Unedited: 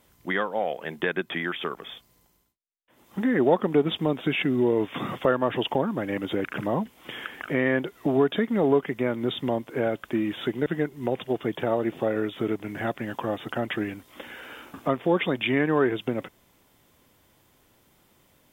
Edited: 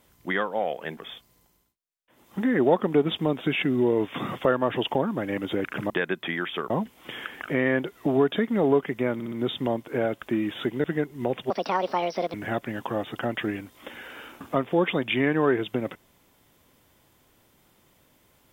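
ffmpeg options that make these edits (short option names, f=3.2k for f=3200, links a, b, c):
-filter_complex "[0:a]asplit=9[a][b][c][d][e][f][g][h][i];[a]atrim=end=0.972[j];[b]atrim=start=1.768:end=6.702[k];[c]atrim=start=0.968:end=1.772[l];[d]atrim=start=6.698:end=9.202[m];[e]atrim=start=9.138:end=9.202[n];[f]atrim=start=9.138:end=9.202[o];[g]atrim=start=9.138:end=11.324[p];[h]atrim=start=11.32:end=12.67,asetpts=PTS-STARTPTS,asetrate=71001,aresample=44100,atrim=end_sample=36978,asetpts=PTS-STARTPTS[q];[i]atrim=start=12.666[r];[j][k]acrossfade=d=0.004:c1=hsin:c2=hsin[s];[s][l]acrossfade=d=0.004:c1=hsin:c2=hsin[t];[t][m]acrossfade=d=0.004:c1=hsin:c2=hsin[u];[u][n]acrossfade=d=0.004:c1=hsin:c2=hsin[v];[v][o]acrossfade=d=0.004:c1=hsin:c2=hsin[w];[w][p]acrossfade=d=0.004:c1=hsin:c2=hsin[x];[x][q]acrossfade=d=0.004:c1=hsin:c2=hsin[y];[y][r]acrossfade=d=0.004:c1=hsin:c2=hsin"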